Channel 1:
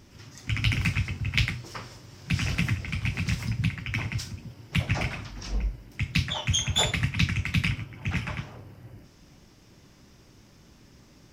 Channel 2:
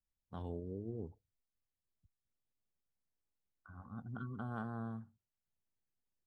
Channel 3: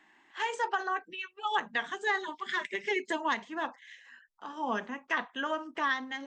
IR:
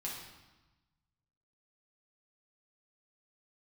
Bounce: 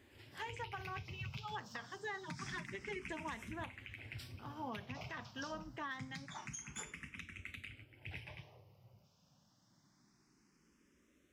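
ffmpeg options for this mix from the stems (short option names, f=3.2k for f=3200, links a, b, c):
-filter_complex "[0:a]asplit=2[a][b];[b]afreqshift=0.26[c];[a][c]amix=inputs=2:normalize=1,volume=-6.5dB,afade=t=out:st=6.53:d=0.31:silence=0.473151[d];[1:a]alimiter=level_in=11dB:limit=-24dB:level=0:latency=1,volume=-11dB,volume=-12.5dB[e];[2:a]lowshelf=f=210:g=10.5,volume=-10dB[f];[d][e]amix=inputs=2:normalize=0,highpass=f=140:p=1,acompressor=threshold=-40dB:ratio=8,volume=0dB[g];[f][g]amix=inputs=2:normalize=0,alimiter=level_in=10dB:limit=-24dB:level=0:latency=1:release=322,volume=-10dB"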